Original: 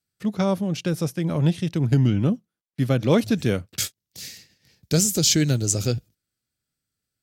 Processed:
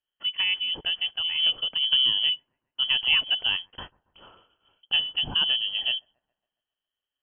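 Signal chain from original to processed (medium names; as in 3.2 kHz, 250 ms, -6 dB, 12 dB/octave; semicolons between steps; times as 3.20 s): feedback echo behind a high-pass 138 ms, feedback 54%, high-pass 2.5 kHz, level -23 dB; frequency inversion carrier 3.2 kHz; trim -4 dB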